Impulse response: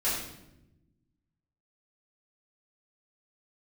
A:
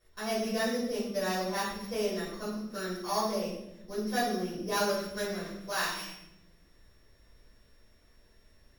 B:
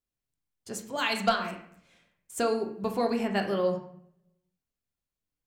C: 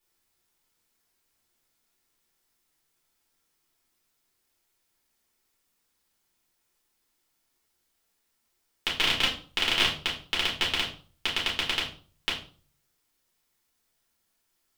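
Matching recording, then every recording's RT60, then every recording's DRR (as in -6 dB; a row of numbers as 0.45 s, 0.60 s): A; 0.90 s, 0.65 s, 0.45 s; -11.5 dB, 2.0 dB, -5.0 dB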